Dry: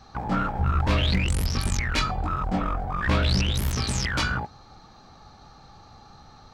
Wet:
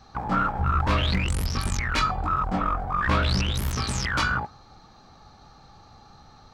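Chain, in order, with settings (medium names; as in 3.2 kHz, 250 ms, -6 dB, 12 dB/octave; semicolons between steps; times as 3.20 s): dynamic bell 1.2 kHz, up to +7 dB, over -42 dBFS, Q 1.6; trim -1.5 dB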